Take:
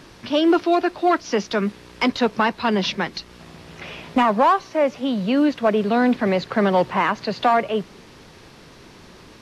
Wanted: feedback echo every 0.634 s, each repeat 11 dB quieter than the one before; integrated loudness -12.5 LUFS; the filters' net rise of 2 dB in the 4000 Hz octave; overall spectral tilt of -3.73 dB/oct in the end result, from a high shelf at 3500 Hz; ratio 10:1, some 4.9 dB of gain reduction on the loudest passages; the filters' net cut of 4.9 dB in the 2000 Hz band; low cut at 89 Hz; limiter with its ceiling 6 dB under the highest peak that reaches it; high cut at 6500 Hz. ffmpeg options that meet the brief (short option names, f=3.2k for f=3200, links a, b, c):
-af "highpass=89,lowpass=6.5k,equalizer=f=2k:t=o:g=-7.5,highshelf=f=3.5k:g=-4,equalizer=f=4k:t=o:g=8.5,acompressor=threshold=-18dB:ratio=10,alimiter=limit=-17dB:level=0:latency=1,aecho=1:1:634|1268|1902:0.282|0.0789|0.0221,volume=14dB"